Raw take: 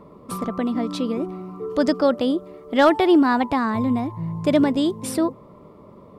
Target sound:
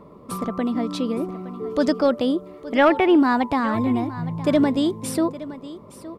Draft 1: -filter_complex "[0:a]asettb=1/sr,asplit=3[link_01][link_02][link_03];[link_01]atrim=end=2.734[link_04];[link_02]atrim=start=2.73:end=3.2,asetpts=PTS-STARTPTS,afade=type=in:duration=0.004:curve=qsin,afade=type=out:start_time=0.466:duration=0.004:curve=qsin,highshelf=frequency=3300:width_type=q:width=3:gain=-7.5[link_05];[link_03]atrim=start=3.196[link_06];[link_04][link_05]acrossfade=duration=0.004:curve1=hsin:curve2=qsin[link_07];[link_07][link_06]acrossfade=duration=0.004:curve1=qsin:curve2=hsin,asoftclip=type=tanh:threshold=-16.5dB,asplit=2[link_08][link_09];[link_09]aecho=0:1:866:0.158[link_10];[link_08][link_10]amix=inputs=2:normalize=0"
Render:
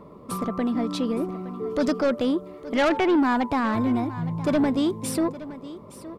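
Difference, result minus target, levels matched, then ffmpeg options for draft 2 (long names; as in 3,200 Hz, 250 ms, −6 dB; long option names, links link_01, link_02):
soft clipping: distortion +15 dB
-filter_complex "[0:a]asettb=1/sr,asplit=3[link_01][link_02][link_03];[link_01]atrim=end=2.734[link_04];[link_02]atrim=start=2.73:end=3.2,asetpts=PTS-STARTPTS,afade=type=in:duration=0.004:curve=qsin,afade=type=out:start_time=0.466:duration=0.004:curve=qsin,highshelf=frequency=3300:width_type=q:width=3:gain=-7.5[link_05];[link_03]atrim=start=3.196[link_06];[link_04][link_05]acrossfade=duration=0.004:curve1=hsin:curve2=qsin[link_07];[link_07][link_06]acrossfade=duration=0.004:curve1=qsin:curve2=hsin,asoftclip=type=tanh:threshold=-5dB,asplit=2[link_08][link_09];[link_09]aecho=0:1:866:0.158[link_10];[link_08][link_10]amix=inputs=2:normalize=0"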